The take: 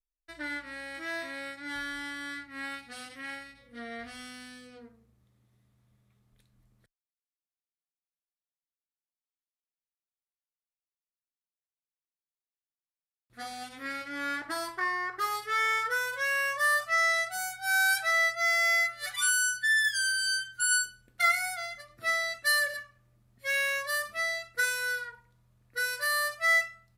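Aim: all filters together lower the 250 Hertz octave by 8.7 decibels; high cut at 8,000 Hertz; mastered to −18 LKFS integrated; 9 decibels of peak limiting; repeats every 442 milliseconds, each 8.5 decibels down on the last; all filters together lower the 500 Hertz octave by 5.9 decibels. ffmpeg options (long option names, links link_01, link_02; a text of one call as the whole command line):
ffmpeg -i in.wav -af "lowpass=8000,equalizer=frequency=250:width_type=o:gain=-8,equalizer=frequency=500:width_type=o:gain=-7,alimiter=limit=-24dB:level=0:latency=1,aecho=1:1:442|884|1326|1768:0.376|0.143|0.0543|0.0206,volume=14dB" out.wav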